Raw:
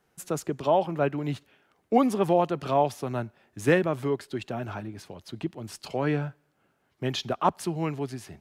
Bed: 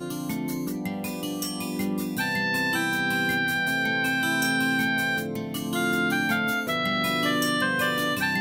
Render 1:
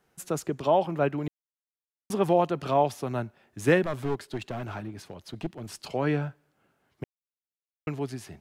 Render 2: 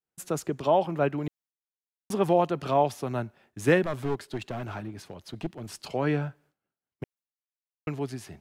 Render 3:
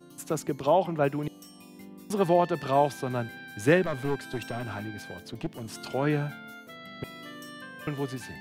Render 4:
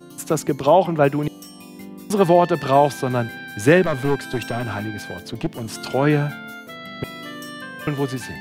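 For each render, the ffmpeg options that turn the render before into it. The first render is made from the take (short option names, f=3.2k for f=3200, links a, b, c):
-filter_complex "[0:a]asettb=1/sr,asplit=3[a][b][c];[a]atrim=end=3.834[d];[b]atrim=start=3.83:end=5.67,asetpts=PTS-STARTPTS,afade=t=in:d=0.004:c=qsin,afade=t=out:st=1.836:d=0.004:c=qsin,aeval=exprs='clip(val(0),-1,0.0188)':c=same[e];[c]atrim=start=5.666[f];[d][e]acrossfade=d=0.004:c1=hsin:c2=qsin[g];[g][f]acrossfade=d=0.004:c1=qsin:c2=hsin,asplit=5[h][i][j][k][l];[h]atrim=end=1.28,asetpts=PTS-STARTPTS,afade=t=out:st=1.276:d=0.004:c=hsin[m];[i]atrim=start=1.28:end=2.1,asetpts=PTS-STARTPTS,volume=0[n];[j]atrim=start=2.1:end=7.04,asetpts=PTS-STARTPTS,afade=t=in:d=0.004:c=hsin,afade=t=out:st=4.936:d=0.004:c=hsin[o];[k]atrim=start=7.04:end=7.87,asetpts=PTS-STARTPTS,volume=0[p];[l]atrim=start=7.87,asetpts=PTS-STARTPTS,afade=t=in:d=0.004:c=hsin[q];[m][n][o][p][q]concat=n=5:v=0:a=1"
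-af "agate=range=-33dB:threshold=-55dB:ratio=3:detection=peak"
-filter_complex "[1:a]volume=-19dB[a];[0:a][a]amix=inputs=2:normalize=0"
-af "volume=9dB,alimiter=limit=-3dB:level=0:latency=1"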